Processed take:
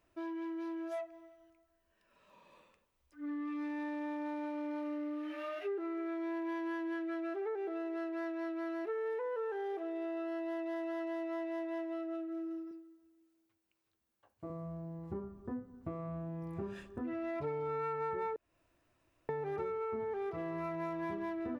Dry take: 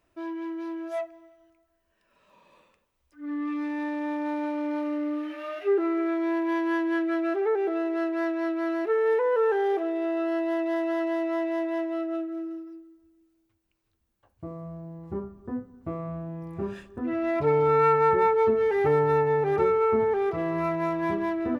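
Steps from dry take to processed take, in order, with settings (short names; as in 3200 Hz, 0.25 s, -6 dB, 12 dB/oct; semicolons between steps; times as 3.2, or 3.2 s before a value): 12.71–14.5 HPF 300 Hz 6 dB/oct; 18.36–19.29 room tone; compressor 4:1, threshold -34 dBFS, peak gain reduction 13.5 dB; gain -3.5 dB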